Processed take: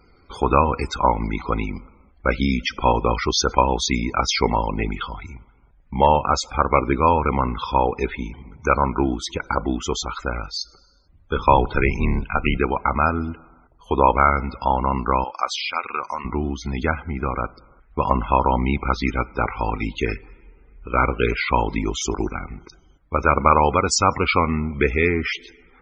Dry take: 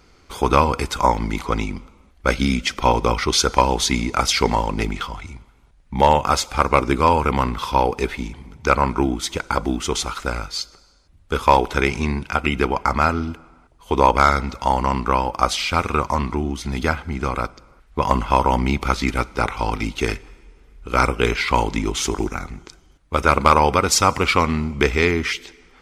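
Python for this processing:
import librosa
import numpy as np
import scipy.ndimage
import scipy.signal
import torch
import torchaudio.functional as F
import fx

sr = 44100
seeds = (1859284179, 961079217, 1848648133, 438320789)

y = fx.octave_divider(x, sr, octaves=2, level_db=2.0, at=(11.36, 12.57))
y = fx.highpass(y, sr, hz=1300.0, slope=6, at=(15.24, 16.25))
y = fx.spec_topn(y, sr, count=64)
y = y * librosa.db_to_amplitude(-1.0)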